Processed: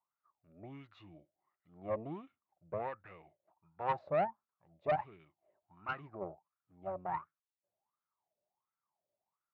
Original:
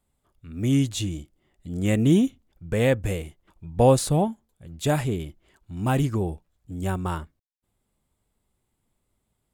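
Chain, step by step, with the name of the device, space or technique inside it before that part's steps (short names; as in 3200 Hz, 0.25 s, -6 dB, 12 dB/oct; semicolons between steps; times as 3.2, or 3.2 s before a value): wah-wah guitar rig (wah 1.4 Hz 570–1400 Hz, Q 11; tube stage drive 33 dB, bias 0.65; speaker cabinet 86–3600 Hz, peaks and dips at 97 Hz +7 dB, 160 Hz +5 dB, 250 Hz -6 dB, 480 Hz -6 dB, 1500 Hz -5 dB, 3200 Hz -9 dB); gain +8.5 dB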